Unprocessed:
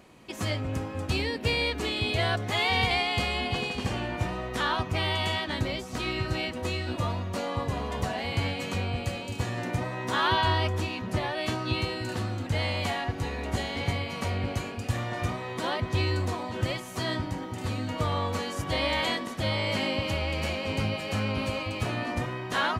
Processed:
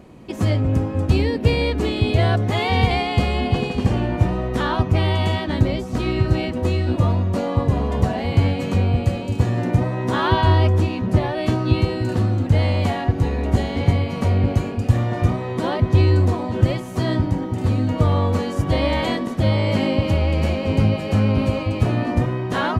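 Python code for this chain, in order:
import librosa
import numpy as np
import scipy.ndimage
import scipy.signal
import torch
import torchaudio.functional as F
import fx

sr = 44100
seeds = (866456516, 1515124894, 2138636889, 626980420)

y = fx.tilt_shelf(x, sr, db=7.0, hz=750.0)
y = y * librosa.db_to_amplitude(6.5)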